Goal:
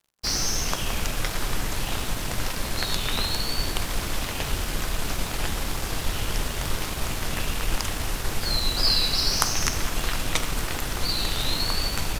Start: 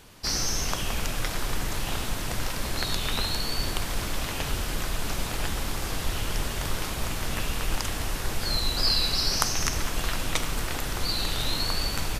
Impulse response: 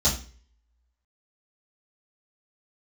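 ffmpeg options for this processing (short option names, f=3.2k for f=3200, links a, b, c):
-af "aeval=exprs='sgn(val(0))*max(abs(val(0))-0.00668,0)':c=same,bandreject=f=56.36:t=h:w=4,bandreject=f=112.72:t=h:w=4,bandreject=f=169.08:t=h:w=4,bandreject=f=225.44:t=h:w=4,bandreject=f=281.8:t=h:w=4,bandreject=f=338.16:t=h:w=4,bandreject=f=394.52:t=h:w=4,bandreject=f=450.88:t=h:w=4,bandreject=f=507.24:t=h:w=4,bandreject=f=563.6:t=h:w=4,bandreject=f=619.96:t=h:w=4,bandreject=f=676.32:t=h:w=4,bandreject=f=732.68:t=h:w=4,bandreject=f=789.04:t=h:w=4,bandreject=f=845.4:t=h:w=4,bandreject=f=901.76:t=h:w=4,bandreject=f=958.12:t=h:w=4,bandreject=f=1.01448k:t=h:w=4,bandreject=f=1.07084k:t=h:w=4,bandreject=f=1.1272k:t=h:w=4,bandreject=f=1.18356k:t=h:w=4,bandreject=f=1.23992k:t=h:w=4,bandreject=f=1.29628k:t=h:w=4,bandreject=f=1.35264k:t=h:w=4,bandreject=f=1.409k:t=h:w=4,bandreject=f=1.46536k:t=h:w=4,bandreject=f=1.52172k:t=h:w=4,bandreject=f=1.57808k:t=h:w=4,bandreject=f=1.63444k:t=h:w=4,bandreject=f=1.6908k:t=h:w=4,bandreject=f=1.74716k:t=h:w=4,bandreject=f=1.80352k:t=h:w=4,volume=3dB"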